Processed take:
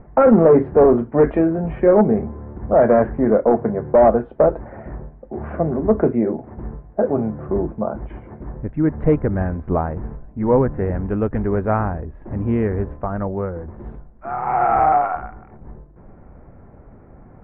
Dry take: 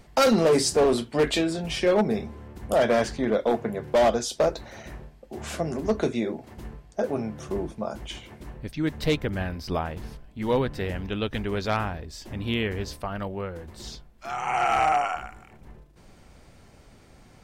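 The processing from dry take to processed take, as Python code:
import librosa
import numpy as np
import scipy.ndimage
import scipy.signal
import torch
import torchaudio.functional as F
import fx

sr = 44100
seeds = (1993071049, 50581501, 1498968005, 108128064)

y = scipy.signal.sosfilt(scipy.signal.bessel(8, 1000.0, 'lowpass', norm='mag', fs=sr, output='sos'), x)
y = y * librosa.db_to_amplitude(9.0)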